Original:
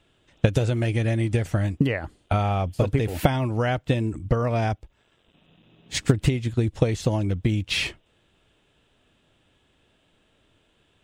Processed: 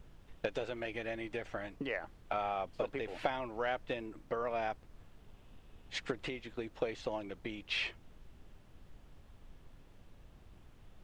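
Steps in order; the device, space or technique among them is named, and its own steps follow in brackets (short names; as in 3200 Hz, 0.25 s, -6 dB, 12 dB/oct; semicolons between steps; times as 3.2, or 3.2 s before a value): aircraft cabin announcement (BPF 470–3400 Hz; soft clip -12.5 dBFS, distortion -21 dB; brown noise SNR 13 dB); gain -7.5 dB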